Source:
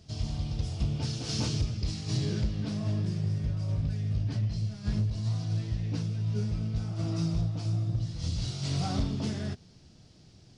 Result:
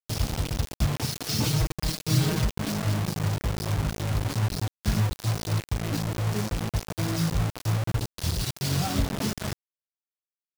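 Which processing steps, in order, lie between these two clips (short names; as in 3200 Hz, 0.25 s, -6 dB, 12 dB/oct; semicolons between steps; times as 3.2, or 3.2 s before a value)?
reverb removal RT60 1.4 s; bit-crush 6-bit; 1.45–2.45 comb 6.4 ms, depth 75%; gain +5.5 dB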